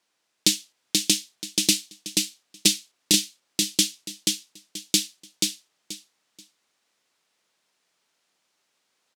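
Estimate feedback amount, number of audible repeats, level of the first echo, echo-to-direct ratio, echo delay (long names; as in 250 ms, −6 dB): 23%, 3, −3.0 dB, −3.0 dB, 482 ms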